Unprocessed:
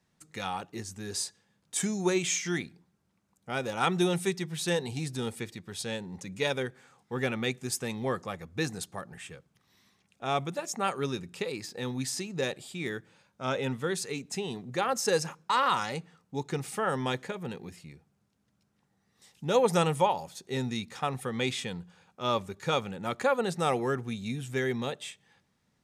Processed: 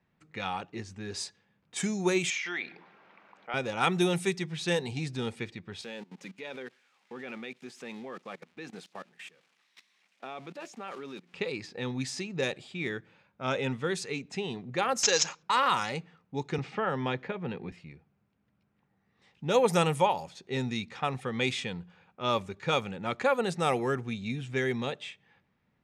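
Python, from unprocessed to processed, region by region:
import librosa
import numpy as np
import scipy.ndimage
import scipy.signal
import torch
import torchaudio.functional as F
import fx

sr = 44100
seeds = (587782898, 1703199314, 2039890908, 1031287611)

y = fx.chain(x, sr, fx.bandpass_edges(low_hz=610.0, high_hz=3500.0),
    fx.env_flatten(amount_pct=50), at=(2.3, 3.54))
y = fx.chain(y, sr, fx.crossing_spikes(level_db=-32.5),
    fx.level_steps(step_db=20),
    fx.highpass(hz=190.0, slope=24), at=(5.81, 11.34))
y = fx.chain(y, sr, fx.riaa(side='recording'),
    fx.resample_bad(factor=3, down='none', up='filtered'), at=(15.03, 15.43))
y = fx.chain(y, sr, fx.air_absorb(metres=180.0),
    fx.band_squash(depth_pct=40), at=(16.58, 17.72))
y = fx.env_lowpass(y, sr, base_hz=2500.0, full_db=-23.0)
y = fx.peak_eq(y, sr, hz=2400.0, db=4.0, octaves=0.52)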